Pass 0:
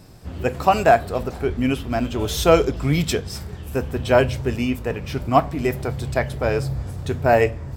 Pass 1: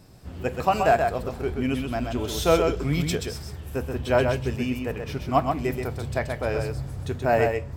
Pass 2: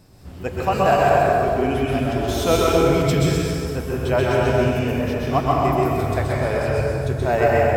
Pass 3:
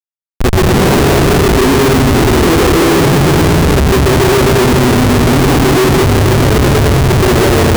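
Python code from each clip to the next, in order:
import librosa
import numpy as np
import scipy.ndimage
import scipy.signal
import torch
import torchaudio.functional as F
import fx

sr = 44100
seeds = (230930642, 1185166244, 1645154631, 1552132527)

y1 = x + 10.0 ** (-5.0 / 20.0) * np.pad(x, (int(129 * sr / 1000.0), 0))[:len(x)]
y1 = y1 * 10.0 ** (-5.5 / 20.0)
y2 = fx.rev_plate(y1, sr, seeds[0], rt60_s=2.6, hf_ratio=0.6, predelay_ms=110, drr_db=-4.5)
y3 = fx.low_shelf_res(y2, sr, hz=490.0, db=8.5, q=3.0)
y3 = fx.schmitt(y3, sr, flips_db=-17.0)
y3 = y3 * 10.0 ** (2.5 / 20.0)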